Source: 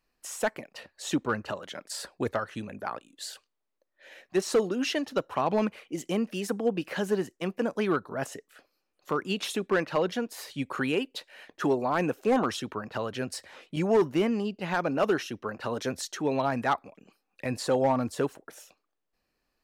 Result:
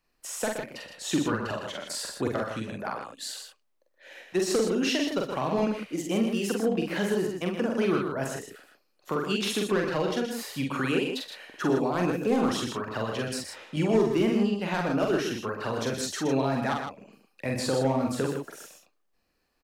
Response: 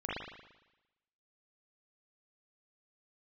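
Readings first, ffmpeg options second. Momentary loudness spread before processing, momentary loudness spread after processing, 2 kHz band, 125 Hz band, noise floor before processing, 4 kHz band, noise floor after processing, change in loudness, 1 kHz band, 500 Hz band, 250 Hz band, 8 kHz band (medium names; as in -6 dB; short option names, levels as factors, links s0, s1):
12 LU, 11 LU, +1.0 dB, +4.0 dB, -80 dBFS, +3.5 dB, -72 dBFS, +1.5 dB, -1.5 dB, +0.5 dB, +3.0 dB, +3.5 dB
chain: -filter_complex "[0:a]acrossover=split=350|3000[s0][s1][s2];[s1]acompressor=threshold=0.0251:ratio=3[s3];[s0][s3][s2]amix=inputs=3:normalize=0,aecho=1:1:45|59|93|123|158:0.708|0.224|0.119|0.398|0.422,volume=1.12"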